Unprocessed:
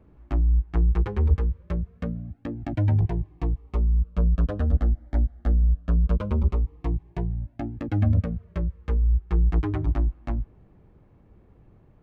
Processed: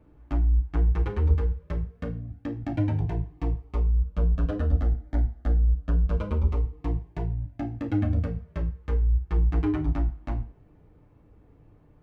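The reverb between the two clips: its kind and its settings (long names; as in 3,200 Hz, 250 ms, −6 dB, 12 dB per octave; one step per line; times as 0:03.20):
feedback delay network reverb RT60 0.38 s, low-frequency decay 0.75×, high-frequency decay 0.95×, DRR 2.5 dB
level −2.5 dB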